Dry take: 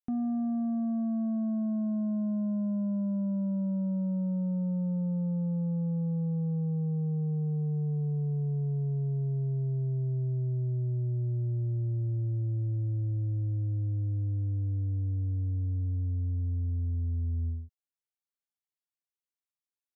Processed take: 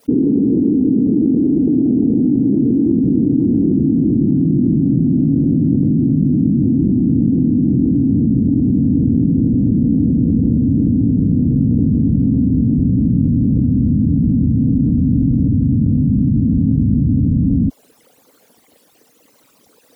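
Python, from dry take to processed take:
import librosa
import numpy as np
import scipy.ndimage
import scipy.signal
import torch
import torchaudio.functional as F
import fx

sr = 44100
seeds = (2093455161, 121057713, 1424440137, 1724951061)

y = fx.envelope_sharpen(x, sr, power=3.0)
y = fx.vibrato(y, sr, rate_hz=1.2, depth_cents=23.0)
y = fx.whisperise(y, sr, seeds[0])
y = fx.dynamic_eq(y, sr, hz=190.0, q=1.9, threshold_db=-43.0, ratio=4.0, max_db=-6)
y = scipy.signal.sosfilt(scipy.signal.butter(2, 56.0, 'highpass', fs=sr, output='sos'), y)
y = fx.peak_eq(y, sr, hz=150.0, db=9.5, octaves=0.36, at=(4.2, 6.62))
y = fx.small_body(y, sr, hz=(270.0, 460.0), ring_ms=25, db=18)
y = fx.env_flatten(y, sr, amount_pct=100)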